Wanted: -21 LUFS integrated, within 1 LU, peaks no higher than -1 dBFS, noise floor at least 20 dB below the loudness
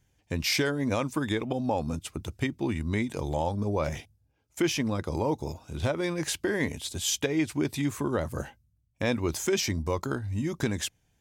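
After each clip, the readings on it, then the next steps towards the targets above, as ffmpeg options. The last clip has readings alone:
loudness -30.0 LUFS; peak level -16.0 dBFS; loudness target -21.0 LUFS
-> -af "volume=2.82"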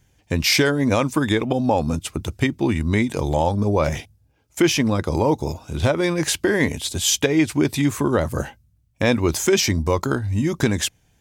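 loudness -21.0 LUFS; peak level -7.0 dBFS; noise floor -62 dBFS

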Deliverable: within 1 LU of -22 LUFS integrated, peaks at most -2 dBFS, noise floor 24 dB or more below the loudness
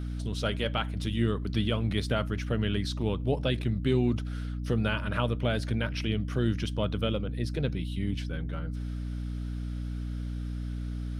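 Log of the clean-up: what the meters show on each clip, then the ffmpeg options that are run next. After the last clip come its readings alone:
hum 60 Hz; highest harmonic 300 Hz; hum level -31 dBFS; loudness -31.0 LUFS; peak level -13.5 dBFS; loudness target -22.0 LUFS
-> -af "bandreject=f=60:t=h:w=4,bandreject=f=120:t=h:w=4,bandreject=f=180:t=h:w=4,bandreject=f=240:t=h:w=4,bandreject=f=300:t=h:w=4"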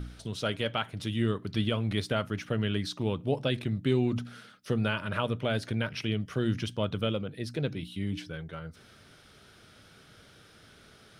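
hum not found; loudness -31.5 LUFS; peak level -15.0 dBFS; loudness target -22.0 LUFS
-> -af "volume=2.99"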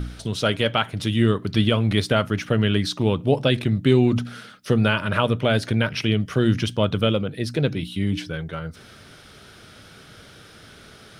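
loudness -22.0 LUFS; peak level -5.5 dBFS; noise floor -47 dBFS

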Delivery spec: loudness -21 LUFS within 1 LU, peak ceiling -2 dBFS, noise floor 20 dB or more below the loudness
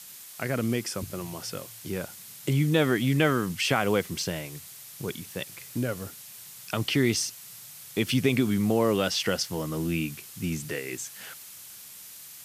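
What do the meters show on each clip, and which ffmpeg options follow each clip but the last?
noise floor -46 dBFS; noise floor target -48 dBFS; loudness -28.0 LUFS; peak level -9.5 dBFS; loudness target -21.0 LUFS
-> -af "afftdn=nr=6:nf=-46"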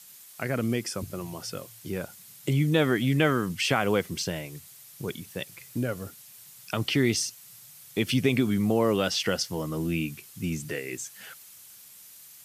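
noise floor -50 dBFS; loudness -28.0 LUFS; peak level -9.5 dBFS; loudness target -21.0 LUFS
-> -af "volume=2.24"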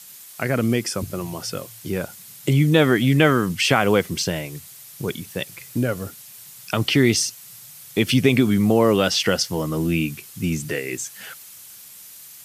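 loudness -21.0 LUFS; peak level -2.5 dBFS; noise floor -43 dBFS

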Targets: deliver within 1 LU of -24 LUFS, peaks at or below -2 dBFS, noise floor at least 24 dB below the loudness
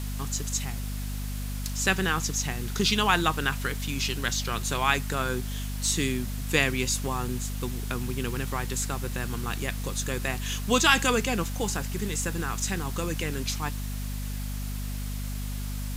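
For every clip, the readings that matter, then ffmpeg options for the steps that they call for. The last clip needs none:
hum 50 Hz; highest harmonic 250 Hz; hum level -30 dBFS; noise floor -32 dBFS; noise floor target -52 dBFS; loudness -28.0 LUFS; peak level -5.5 dBFS; loudness target -24.0 LUFS
-> -af "bandreject=f=50:t=h:w=6,bandreject=f=100:t=h:w=6,bandreject=f=150:t=h:w=6,bandreject=f=200:t=h:w=6,bandreject=f=250:t=h:w=6"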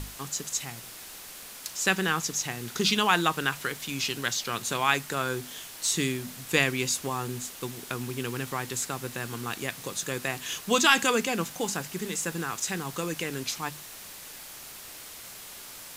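hum not found; noise floor -44 dBFS; noise floor target -53 dBFS
-> -af "afftdn=nr=9:nf=-44"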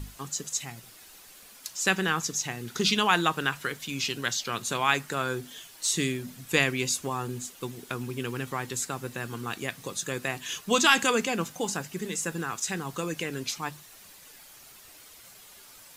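noise floor -51 dBFS; noise floor target -53 dBFS
-> -af "afftdn=nr=6:nf=-51"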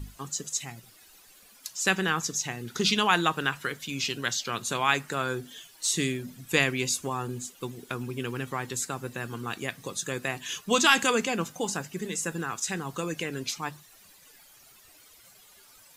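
noise floor -56 dBFS; loudness -28.5 LUFS; peak level -5.0 dBFS; loudness target -24.0 LUFS
-> -af "volume=1.68,alimiter=limit=0.794:level=0:latency=1"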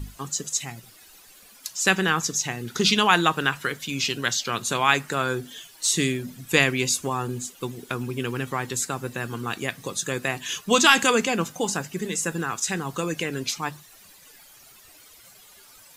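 loudness -24.0 LUFS; peak level -2.0 dBFS; noise floor -51 dBFS

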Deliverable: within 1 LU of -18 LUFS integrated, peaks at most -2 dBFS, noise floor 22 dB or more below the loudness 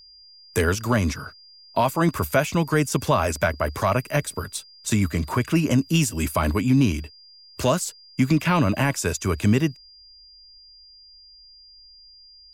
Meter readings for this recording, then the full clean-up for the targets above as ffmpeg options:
steady tone 4.8 kHz; tone level -47 dBFS; loudness -23.0 LUFS; peak level -9.0 dBFS; loudness target -18.0 LUFS
-> -af "bandreject=f=4800:w=30"
-af "volume=1.78"

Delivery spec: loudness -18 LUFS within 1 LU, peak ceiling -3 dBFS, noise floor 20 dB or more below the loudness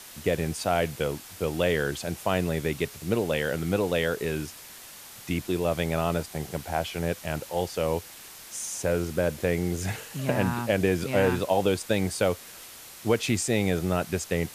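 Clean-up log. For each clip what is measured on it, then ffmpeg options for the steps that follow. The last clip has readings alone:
noise floor -46 dBFS; noise floor target -48 dBFS; loudness -28.0 LUFS; peak level -10.0 dBFS; loudness target -18.0 LUFS
-> -af "afftdn=nr=6:nf=-46"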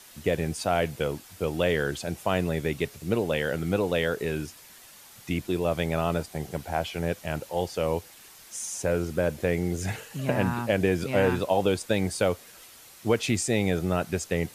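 noise floor -50 dBFS; loudness -28.0 LUFS; peak level -10.0 dBFS; loudness target -18.0 LUFS
-> -af "volume=3.16,alimiter=limit=0.708:level=0:latency=1"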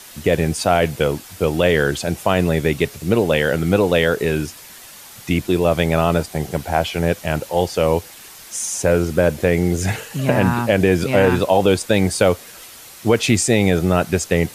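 loudness -18.5 LUFS; peak level -3.0 dBFS; noise floor -40 dBFS

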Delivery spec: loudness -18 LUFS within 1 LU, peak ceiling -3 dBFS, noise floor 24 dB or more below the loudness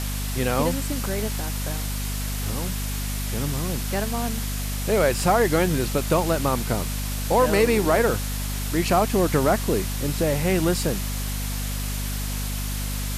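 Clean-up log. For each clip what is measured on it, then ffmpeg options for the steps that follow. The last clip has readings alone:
hum 50 Hz; highest harmonic 250 Hz; hum level -26 dBFS; noise floor -28 dBFS; noise floor target -48 dBFS; loudness -24.0 LUFS; peak level -7.0 dBFS; loudness target -18.0 LUFS
-> -af "bandreject=f=50:t=h:w=6,bandreject=f=100:t=h:w=6,bandreject=f=150:t=h:w=6,bandreject=f=200:t=h:w=6,bandreject=f=250:t=h:w=6"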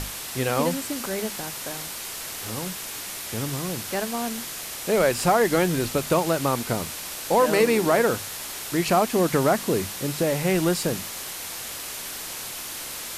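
hum not found; noise floor -35 dBFS; noise floor target -49 dBFS
-> -af "afftdn=nr=14:nf=-35"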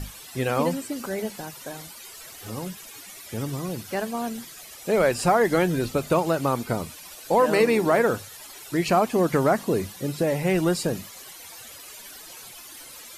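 noise floor -44 dBFS; noise floor target -49 dBFS
-> -af "afftdn=nr=6:nf=-44"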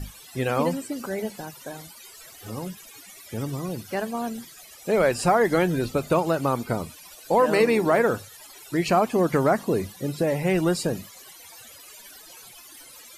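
noise floor -47 dBFS; noise floor target -49 dBFS
-> -af "afftdn=nr=6:nf=-47"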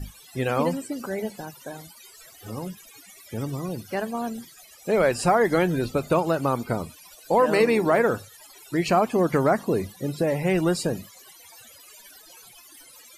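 noise floor -50 dBFS; loudness -24.5 LUFS; peak level -8.5 dBFS; loudness target -18.0 LUFS
-> -af "volume=2.11,alimiter=limit=0.708:level=0:latency=1"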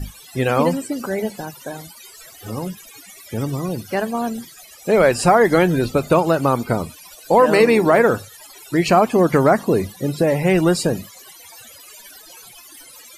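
loudness -18.0 LUFS; peak level -3.0 dBFS; noise floor -43 dBFS

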